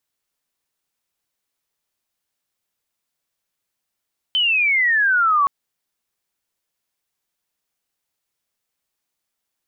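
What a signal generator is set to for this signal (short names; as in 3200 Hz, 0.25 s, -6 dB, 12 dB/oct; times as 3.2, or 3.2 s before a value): chirp logarithmic 3100 Hz -> 1100 Hz -15 dBFS -> -13 dBFS 1.12 s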